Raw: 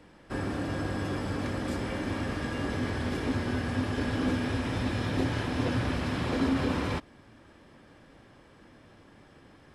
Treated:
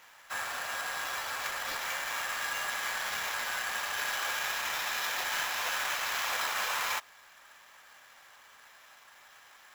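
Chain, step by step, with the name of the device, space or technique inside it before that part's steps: Bessel high-pass 1.2 kHz, order 6; early companding sampler (sample-rate reducer 9.1 kHz, jitter 0%; companded quantiser 8-bit); trim +7.5 dB

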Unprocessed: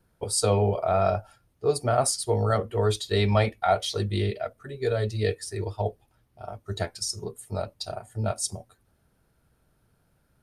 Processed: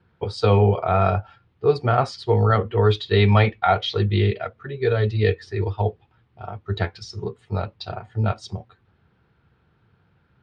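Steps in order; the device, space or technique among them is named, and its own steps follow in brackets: guitar cabinet (cabinet simulation 83–3600 Hz, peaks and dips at 90 Hz +4 dB, 270 Hz -6 dB, 610 Hz -10 dB); trim +7.5 dB

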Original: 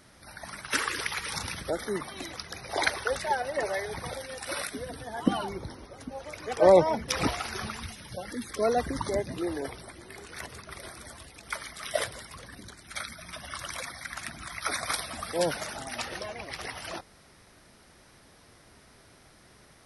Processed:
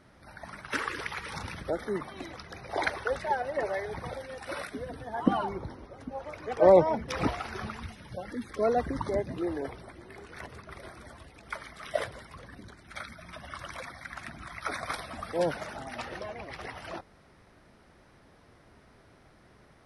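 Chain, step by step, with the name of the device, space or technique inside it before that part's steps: 5.10–6.40 s: dynamic bell 980 Hz, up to +5 dB, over -46 dBFS, Q 1.2; through cloth (treble shelf 3.7 kHz -16 dB)

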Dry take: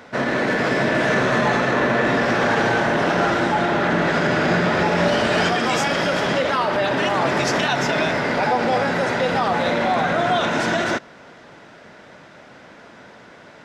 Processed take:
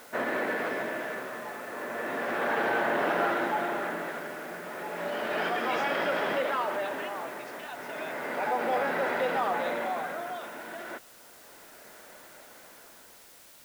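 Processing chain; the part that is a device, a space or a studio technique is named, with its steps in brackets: shortwave radio (band-pass 320–2700 Hz; tremolo 0.33 Hz, depth 77%; white noise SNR 22 dB); trim -6.5 dB

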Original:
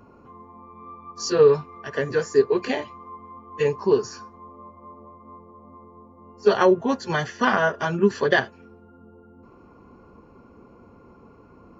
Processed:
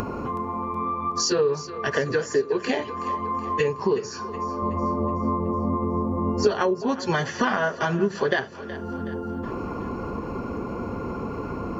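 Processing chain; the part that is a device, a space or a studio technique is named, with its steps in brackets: upward and downward compression (upward compressor, threshold -27 dBFS; compression 5:1, threshold -29 dBFS, peak gain reduction 16.5 dB); 4.62–6.47 s: bass shelf 430 Hz +9 dB; two-band feedback delay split 350 Hz, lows 96 ms, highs 372 ms, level -15 dB; trim +8 dB

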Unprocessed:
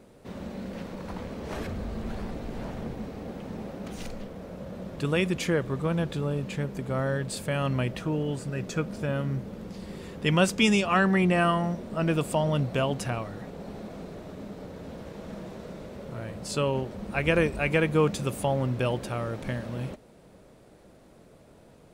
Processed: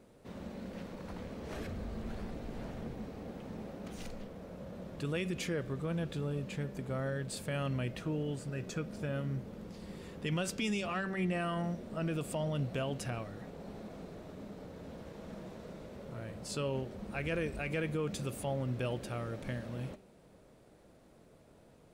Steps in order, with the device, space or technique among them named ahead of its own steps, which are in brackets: soft clipper into limiter (saturation -11 dBFS, distortion -26 dB; peak limiter -19.5 dBFS, peak gain reduction 7 dB); de-hum 192.8 Hz, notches 29; dynamic bell 960 Hz, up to -5 dB, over -47 dBFS, Q 2.5; trim -6.5 dB

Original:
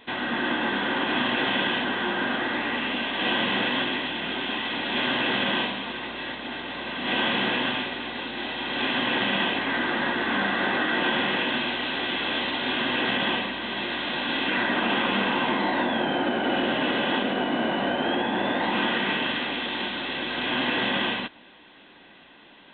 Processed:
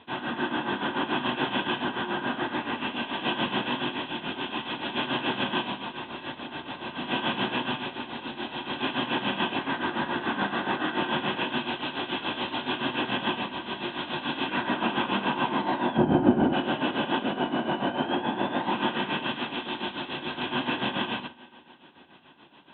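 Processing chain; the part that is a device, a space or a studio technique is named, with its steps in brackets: combo amplifier with spring reverb and tremolo (spring tank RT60 3.5 s, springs 44 ms, chirp 40 ms, DRR 18.5 dB; tremolo 7 Hz, depth 71%; cabinet simulation 82–3700 Hz, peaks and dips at 85 Hz +10 dB, 140 Hz +7 dB, 350 Hz +3 dB, 500 Hz -4 dB, 950 Hz +4 dB, 2 kHz -9 dB); 15.97–16.53 s: tilt EQ -4.5 dB/octave

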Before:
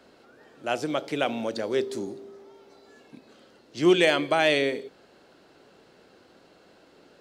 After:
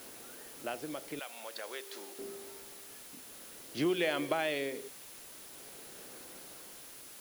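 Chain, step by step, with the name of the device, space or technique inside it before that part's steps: medium wave at night (band-pass 120–4300 Hz; compression, threshold -29 dBFS, peak gain reduction 14 dB; tremolo 0.49 Hz, depth 67%; whistle 10 kHz -57 dBFS; white noise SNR 13 dB); 1.19–2.19 s: high-pass 920 Hz 12 dB/octave; trim +1 dB

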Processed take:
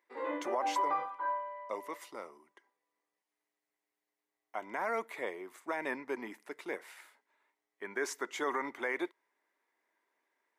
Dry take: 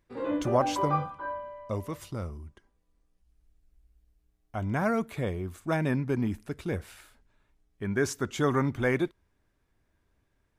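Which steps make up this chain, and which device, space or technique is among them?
laptop speaker (high-pass 340 Hz 24 dB/octave; peaking EQ 950 Hz +8.5 dB 0.49 oct; peaking EQ 2 kHz +12 dB 0.29 oct; peak limiter -18 dBFS, peak gain reduction 8.5 dB); trim -5.5 dB

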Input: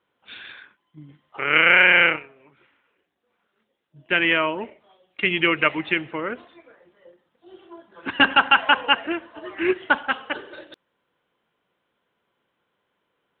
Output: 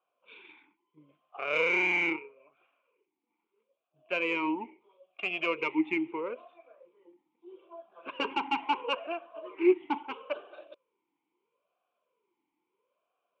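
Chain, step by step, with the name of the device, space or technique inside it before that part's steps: talk box (valve stage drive 12 dB, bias 0.4; talking filter a-u 0.76 Hz); trim +5 dB

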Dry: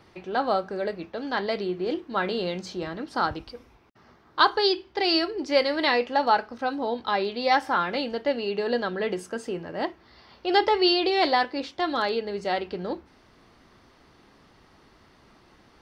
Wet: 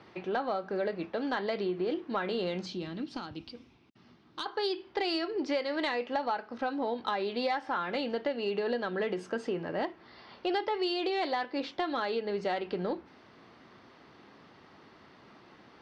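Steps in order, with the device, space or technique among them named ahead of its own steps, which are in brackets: AM radio (band-pass 130–4200 Hz; compression 8:1, threshold -29 dBFS, peak gain reduction 15 dB; saturation -19 dBFS, distortion -28 dB); 2.66–4.46 s: high-order bell 900 Hz -10.5 dB 2.6 oct; trim +1.5 dB

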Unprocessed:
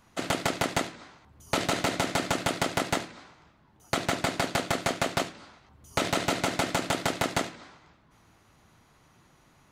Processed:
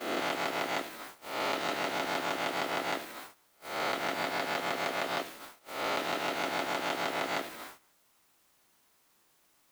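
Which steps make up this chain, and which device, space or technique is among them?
reverse spectral sustain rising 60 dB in 0.67 s; baby monitor (band-pass 320–4300 Hz; compression 8:1, threshold -33 dBFS, peak gain reduction 12.5 dB; white noise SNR 16 dB; gate -48 dBFS, range -18 dB); trim +3.5 dB

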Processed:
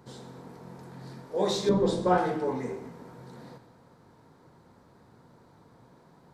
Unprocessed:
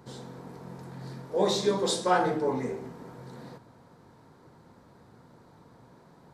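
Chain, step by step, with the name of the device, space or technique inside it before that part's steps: saturated reverb return (on a send at -11 dB: reverberation RT60 0.95 s, pre-delay 60 ms + saturation -26 dBFS, distortion -10 dB); 1.69–2.18 s: on the sum: tilt EQ -4 dB/octave; trim -2 dB

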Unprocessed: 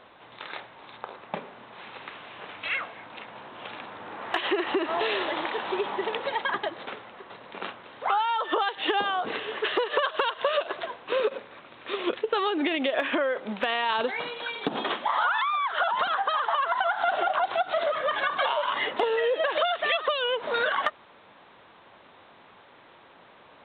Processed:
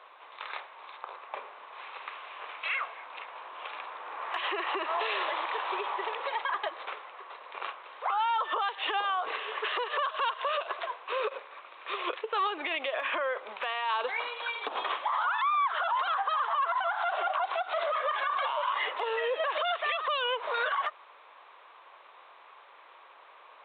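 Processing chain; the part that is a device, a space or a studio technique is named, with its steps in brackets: laptop speaker (high-pass 440 Hz 24 dB/octave; peaking EQ 1.1 kHz +9 dB 0.5 oct; peaking EQ 2.4 kHz +5 dB 0.49 oct; peak limiter -17 dBFS, peak gain reduction 9.5 dB); trim -4.5 dB

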